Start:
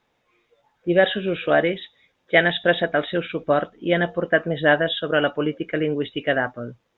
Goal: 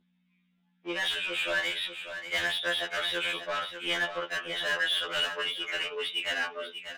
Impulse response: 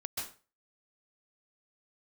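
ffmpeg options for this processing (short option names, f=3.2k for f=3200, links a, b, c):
-filter_complex "[0:a]agate=range=-22dB:threshold=-44dB:ratio=16:detection=peak,asplit=2[a][b];[b]acompressor=threshold=-26dB:ratio=6,volume=3dB[c];[a][c]amix=inputs=2:normalize=0,asoftclip=type=tanh:threshold=-8.5dB,bandpass=f=3.1k:t=q:w=1.6:csg=0,aeval=exprs='val(0)+0.000794*(sin(2*PI*60*n/s)+sin(2*PI*2*60*n/s)/2+sin(2*PI*3*60*n/s)/3+sin(2*PI*4*60*n/s)/4+sin(2*PI*5*60*n/s)/5)':c=same,asplit=2[d][e];[e]highpass=f=720:p=1,volume=25dB,asoftclip=type=tanh:threshold=-11dB[f];[d][f]amix=inputs=2:normalize=0,lowpass=f=3.3k:p=1,volume=-6dB,aecho=1:1:593:0.335,afftfilt=real='re*2*eq(mod(b,4),0)':imag='im*2*eq(mod(b,4),0)':win_size=2048:overlap=0.75,volume=-7.5dB"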